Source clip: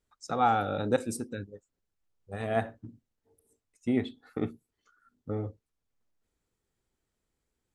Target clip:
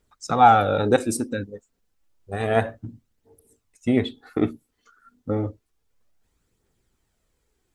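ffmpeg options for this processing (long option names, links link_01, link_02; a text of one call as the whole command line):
ffmpeg -i in.wav -af "aphaser=in_gain=1:out_gain=1:delay=4.6:decay=0.35:speed=0.3:type=triangular,volume=9dB" out.wav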